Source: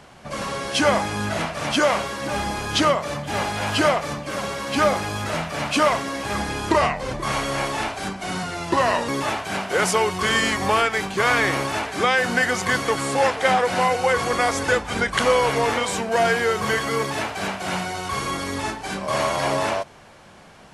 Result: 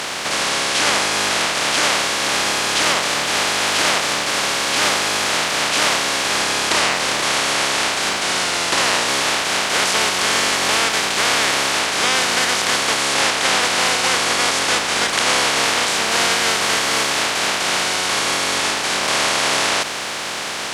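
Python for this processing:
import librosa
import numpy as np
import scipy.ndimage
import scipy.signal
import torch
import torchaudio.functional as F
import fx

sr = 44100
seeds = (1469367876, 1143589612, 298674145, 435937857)

y = fx.spec_flatten(x, sr, power=0.21)
y = fx.highpass(y, sr, hz=380.0, slope=6)
y = fx.air_absorb(y, sr, metres=73.0)
y = fx.env_flatten(y, sr, amount_pct=70)
y = y * librosa.db_to_amplitude(2.5)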